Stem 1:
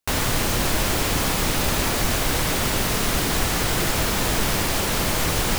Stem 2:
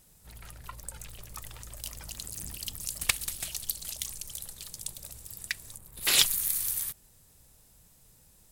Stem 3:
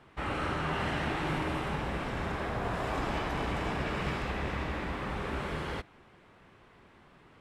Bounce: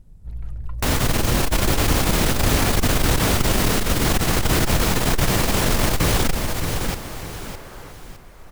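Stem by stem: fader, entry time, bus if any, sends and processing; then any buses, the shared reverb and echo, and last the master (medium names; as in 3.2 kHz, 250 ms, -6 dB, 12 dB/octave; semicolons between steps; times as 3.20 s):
+1.0 dB, 0.75 s, no send, echo send -5.5 dB, none
-3.0 dB, 0.00 s, no send, no echo send, tilt EQ -4 dB/octave
-11.5 dB, 2.10 s, no send, no echo send, high-pass 300 Hz; overdrive pedal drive 31 dB, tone 1.1 kHz, clips at -23.5 dBFS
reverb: none
echo: feedback delay 610 ms, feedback 35%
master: bass shelf 490 Hz +5 dB; transformer saturation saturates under 72 Hz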